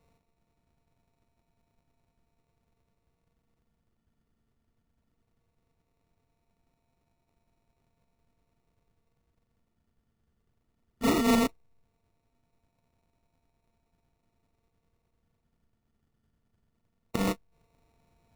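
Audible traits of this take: a buzz of ramps at a fixed pitch in blocks of 64 samples; phasing stages 12, 0.17 Hz, lowest notch 730–2100 Hz; aliases and images of a low sample rate 1.6 kHz, jitter 0%

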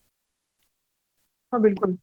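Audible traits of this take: a quantiser's noise floor 12-bit, dither triangular; chopped level 1.7 Hz, depth 65%, duty 15%; Opus

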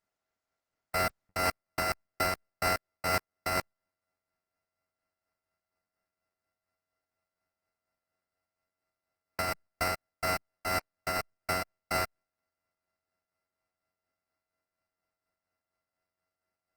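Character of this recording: a buzz of ramps at a fixed pitch in blocks of 32 samples; tremolo triangle 4.2 Hz, depth 45%; aliases and images of a low sample rate 3.4 kHz, jitter 0%; Opus

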